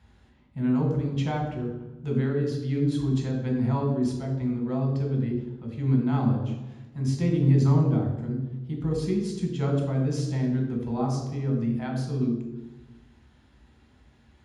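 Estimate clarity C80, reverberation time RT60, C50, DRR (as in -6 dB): 6.0 dB, 1.1 s, 4.0 dB, -0.5 dB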